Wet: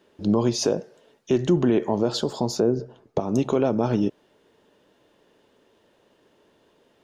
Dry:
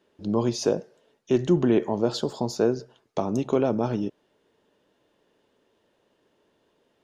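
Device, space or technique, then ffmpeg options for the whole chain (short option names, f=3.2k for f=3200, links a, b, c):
stacked limiters: -filter_complex "[0:a]asettb=1/sr,asplit=3[a][b][c];[a]atrim=end=2.604[d];[b]atrim=start=2.6:end=3.2,asetpts=PTS-STARTPTS,afade=t=in:d=0.004:c=qsin,afade=t=out:st=0.596:d=0.004:c=qsin,tiltshelf=f=1.1k:g=8[e];[c]atrim=start=3.196[f];[d][e]acrossfade=d=0.004:c1=hsin:c2=qsin[g];[g][f]acrossfade=d=0.004:c1=qsin:c2=hsin,alimiter=limit=-14dB:level=0:latency=1:release=320,alimiter=limit=-17.5dB:level=0:latency=1:release=153,volume=6.5dB"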